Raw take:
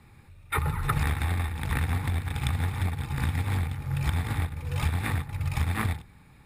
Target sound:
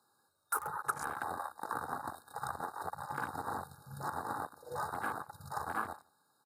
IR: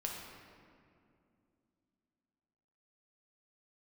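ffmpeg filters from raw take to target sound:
-filter_complex "[0:a]highpass=510,aemphasis=mode=production:type=50kf,asettb=1/sr,asplit=3[link_01][link_02][link_03];[link_01]atrim=end=0.824[link_04];[link_02]atrim=start=0.82:end=2.93,asetpts=PTS-STARTPTS,afade=type=in:duration=0.004:curve=qsin,afade=type=out:start_time=2.106:duration=0.004:curve=qsin,agate=range=-33dB:threshold=-33dB:ratio=3:detection=peak[link_05];[link_03]atrim=start=2.926[link_06];[link_04][link_05]acrossfade=duration=0.004:curve1=hsin:curve2=qsin[link_07];[link_07][link_06]acrossfade=duration=0.004:curve1=qsin:curve2=hsin,afftfilt=real='re*(1-between(b*sr/4096,1700,3700))':imag='im*(1-between(b*sr/4096,1700,3700))':win_size=4096:overlap=0.75,afwtdn=0.0112,highshelf=frequency=9600:gain=-10,acompressor=threshold=-40dB:ratio=3,asplit=2[link_08][link_09];[link_09]adelay=163.3,volume=-29dB,highshelf=frequency=4000:gain=-3.67[link_10];[link_08][link_10]amix=inputs=2:normalize=0,volume=5.5dB"

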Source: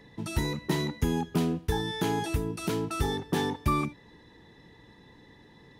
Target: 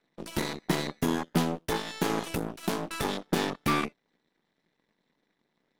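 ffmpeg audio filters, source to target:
ffmpeg -i in.wav -af "aeval=exprs='0.2*(cos(1*acos(clip(val(0)/0.2,-1,1)))-cos(1*PI/2))+0.00316*(cos(3*acos(clip(val(0)/0.2,-1,1)))-cos(3*PI/2))+0.00355*(cos(5*acos(clip(val(0)/0.2,-1,1)))-cos(5*PI/2))+0.0282*(cos(7*acos(clip(val(0)/0.2,-1,1)))-cos(7*PI/2))+0.0282*(cos(8*acos(clip(val(0)/0.2,-1,1)))-cos(8*PI/2))':channel_layout=same,lowshelf=frequency=130:width_type=q:width=1.5:gain=-10.5" out.wav

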